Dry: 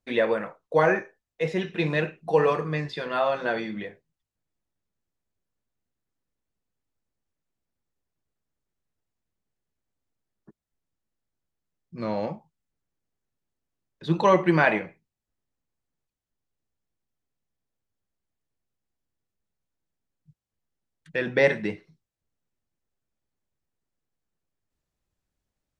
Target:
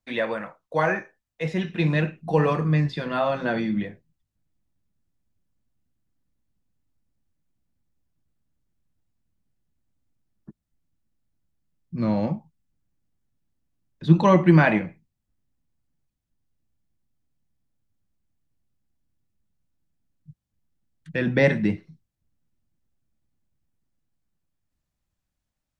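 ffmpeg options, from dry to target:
-filter_complex "[0:a]equalizer=f=420:t=o:w=0.64:g=-8,acrossover=split=390[s0][s1];[s0]dynaudnorm=f=410:g=9:m=3.55[s2];[s2][s1]amix=inputs=2:normalize=0"

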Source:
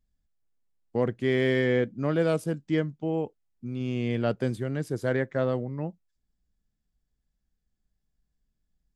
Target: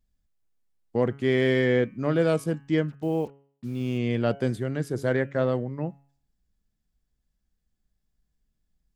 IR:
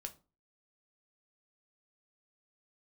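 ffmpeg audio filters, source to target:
-filter_complex "[0:a]asplit=3[s0][s1][s2];[s0]afade=t=out:st=2.88:d=0.02[s3];[s1]acrusher=bits=8:mix=0:aa=0.5,afade=t=in:st=2.88:d=0.02,afade=t=out:st=3.97:d=0.02[s4];[s2]afade=t=in:st=3.97:d=0.02[s5];[s3][s4][s5]amix=inputs=3:normalize=0,bandreject=f=139.1:t=h:w=4,bandreject=f=278.2:t=h:w=4,bandreject=f=417.3:t=h:w=4,bandreject=f=556.4:t=h:w=4,bandreject=f=695.5:t=h:w=4,bandreject=f=834.6:t=h:w=4,bandreject=f=973.7:t=h:w=4,bandreject=f=1112.8:t=h:w=4,bandreject=f=1251.9:t=h:w=4,bandreject=f=1391:t=h:w=4,bandreject=f=1530.1:t=h:w=4,bandreject=f=1669.2:t=h:w=4,bandreject=f=1808.3:t=h:w=4,bandreject=f=1947.4:t=h:w=4,bandreject=f=2086.5:t=h:w=4,bandreject=f=2225.6:t=h:w=4,bandreject=f=2364.7:t=h:w=4,bandreject=f=2503.8:t=h:w=4,bandreject=f=2642.9:t=h:w=4,bandreject=f=2782:t=h:w=4,bandreject=f=2921.1:t=h:w=4,bandreject=f=3060.2:t=h:w=4,volume=1.26"

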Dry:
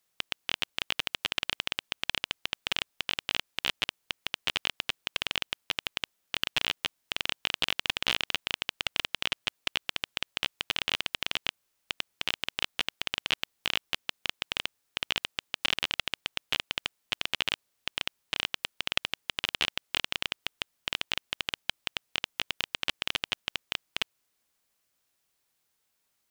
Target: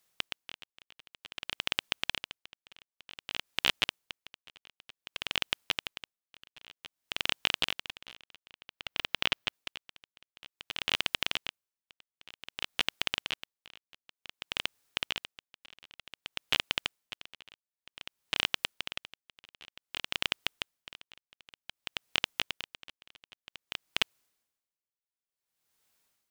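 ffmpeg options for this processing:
-filter_complex "[0:a]asettb=1/sr,asplit=3[s0][s1][s2];[s0]atrim=end=8.474[s3];[s1]atrim=start=8.47:end=9.53,asetpts=PTS-STARTPTS,afade=t=in:d=0.004:c=qsin,afade=t=out:st=1.056:d=0.004:c=qsin,equalizer=f=8700:t=o:w=1.2:g=-7.5[s4];[s2]atrim=start=9.526[s5];[s3][s4]acrossfade=d=0.004:c1=hsin:c2=qsin[s6];[s6][s5]acrossfade=d=0.004:c1=qsin:c2=hsin,aeval=exprs='val(0)*pow(10,-29*(0.5-0.5*cos(2*PI*0.54*n/s))/20)':c=same,volume=1.41"

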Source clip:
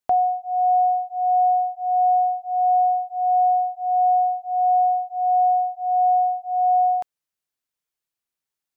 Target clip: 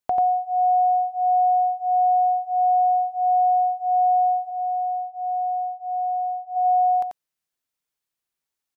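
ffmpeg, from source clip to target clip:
-filter_complex "[0:a]acompressor=threshold=0.0891:ratio=4,asplit=3[s0][s1][s2];[s0]afade=t=out:st=4.49:d=0.02[s3];[s1]bandpass=f=650:t=q:w=7.8:csg=0,afade=t=in:st=4.49:d=0.02,afade=t=out:st=6.55:d=0.02[s4];[s2]afade=t=in:st=6.55:d=0.02[s5];[s3][s4][s5]amix=inputs=3:normalize=0,aecho=1:1:89:0.596"

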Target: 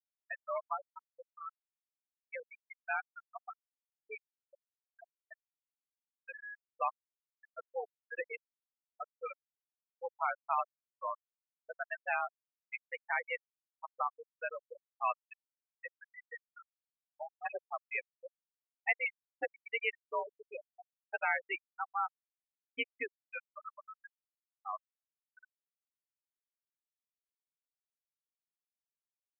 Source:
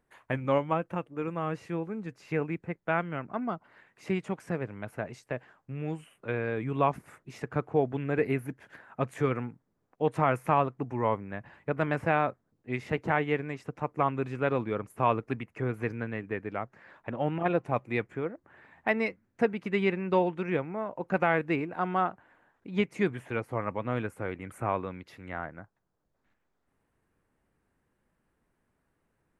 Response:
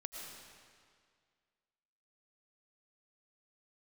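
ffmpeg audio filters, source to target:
-af "afreqshift=55,aderivative,afftfilt=real='re*gte(hypot(re,im),0.0224)':imag='im*gte(hypot(re,im),0.0224)':win_size=1024:overlap=0.75,volume=3.35"

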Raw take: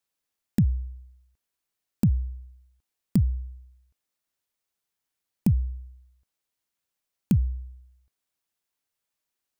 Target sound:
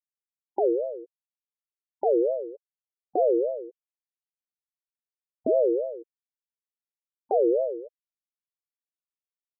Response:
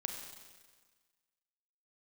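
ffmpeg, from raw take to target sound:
-af "asubboost=boost=8.5:cutoff=100,afftfilt=real='re*gte(hypot(re,im),0.126)':imag='im*gte(hypot(re,im),0.126)':win_size=1024:overlap=0.75,alimiter=limit=0.188:level=0:latency=1:release=170,aeval=exprs='val(0)*sin(2*PI*500*n/s+500*0.2/3.4*sin(2*PI*3.4*n/s))':c=same"

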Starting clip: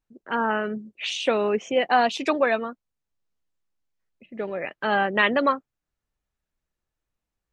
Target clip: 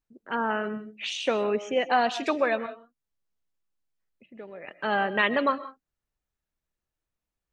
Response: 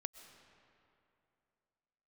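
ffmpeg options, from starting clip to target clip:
-filter_complex "[0:a]asettb=1/sr,asplit=3[s0][s1][s2];[s0]atrim=end=2.664[s3];[s1]atrim=start=2.66:end=4.68,asetpts=PTS-STARTPTS,afade=t=in:d=0.004:c=qsin,afade=t=out:st=2.016:d=0.004:c=qsin,acompressor=threshold=0.00251:ratio=1.5[s4];[s2]atrim=start=4.676[s5];[s3][s4]acrossfade=d=0.004:c1=hsin:c2=qsin[s6];[s6][s5]acrossfade=d=0.004:c1=qsin:c2=hsin[s7];[1:a]atrim=start_sample=2205,afade=t=out:st=0.24:d=0.01,atrim=end_sample=11025[s8];[s7][s8]afir=irnorm=-1:irlink=0"

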